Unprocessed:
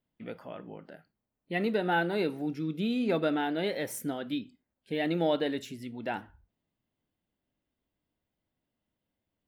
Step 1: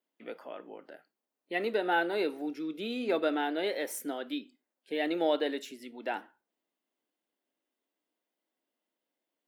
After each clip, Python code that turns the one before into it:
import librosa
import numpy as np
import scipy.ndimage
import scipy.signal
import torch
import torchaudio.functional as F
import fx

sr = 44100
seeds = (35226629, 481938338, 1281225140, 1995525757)

y = scipy.signal.sosfilt(scipy.signal.butter(4, 290.0, 'highpass', fs=sr, output='sos'), x)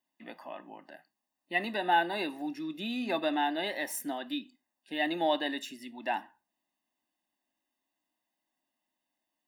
y = x + 0.85 * np.pad(x, (int(1.1 * sr / 1000.0), 0))[:len(x)]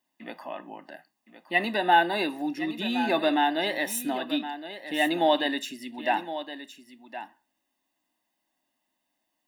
y = x + 10.0 ** (-12.0 / 20.0) * np.pad(x, (int(1066 * sr / 1000.0), 0))[:len(x)]
y = F.gain(torch.from_numpy(y), 6.0).numpy()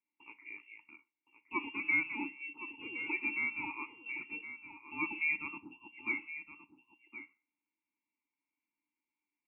y = fx.freq_invert(x, sr, carrier_hz=3000)
y = fx.vowel_filter(y, sr, vowel='u')